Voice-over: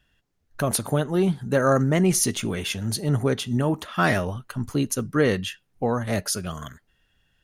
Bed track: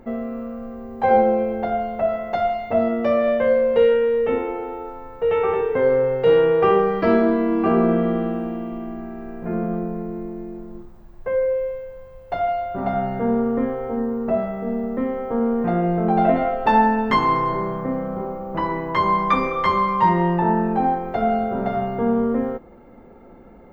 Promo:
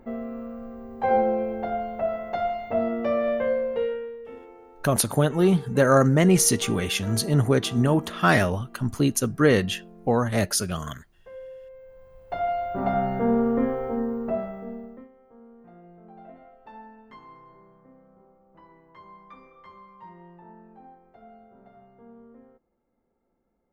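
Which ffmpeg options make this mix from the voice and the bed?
ffmpeg -i stem1.wav -i stem2.wav -filter_complex "[0:a]adelay=4250,volume=2dB[link_01];[1:a]volume=13.5dB,afade=type=out:start_time=3.35:duration=0.83:silence=0.177828,afade=type=in:start_time=11.65:duration=1.18:silence=0.112202,afade=type=out:start_time=13.74:duration=1.35:silence=0.0398107[link_02];[link_01][link_02]amix=inputs=2:normalize=0" out.wav

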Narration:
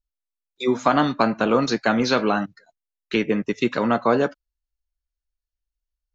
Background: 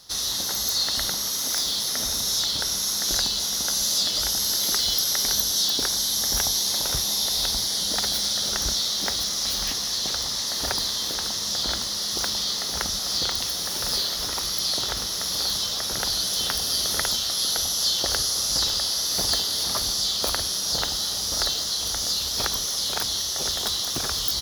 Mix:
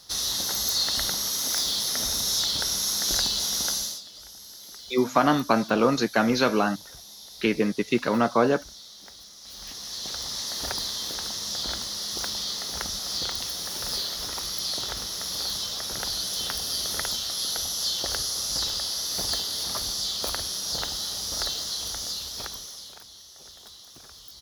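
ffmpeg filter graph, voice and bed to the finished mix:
ffmpeg -i stem1.wav -i stem2.wav -filter_complex "[0:a]adelay=4300,volume=-2dB[link_01];[1:a]volume=15dB,afade=type=out:start_time=3.66:duration=0.35:silence=0.105925,afade=type=in:start_time=9.42:duration=0.96:silence=0.158489,afade=type=out:start_time=21.76:duration=1.25:silence=0.149624[link_02];[link_01][link_02]amix=inputs=2:normalize=0" out.wav

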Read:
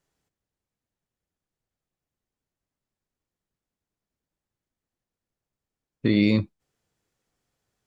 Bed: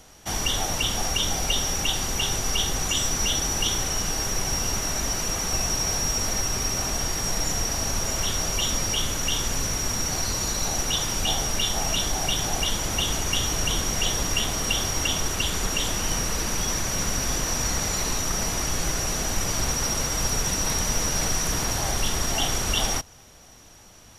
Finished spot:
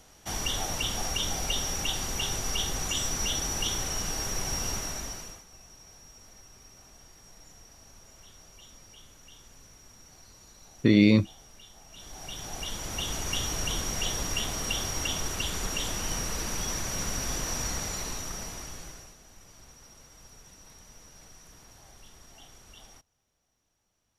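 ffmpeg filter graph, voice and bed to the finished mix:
ffmpeg -i stem1.wav -i stem2.wav -filter_complex "[0:a]adelay=4800,volume=1dB[link_01];[1:a]volume=15.5dB,afade=type=out:start_time=4.7:duration=0.74:silence=0.0841395,afade=type=in:start_time=11.9:duration=1.42:silence=0.0891251,afade=type=out:start_time=17.58:duration=1.58:silence=0.0841395[link_02];[link_01][link_02]amix=inputs=2:normalize=0" out.wav

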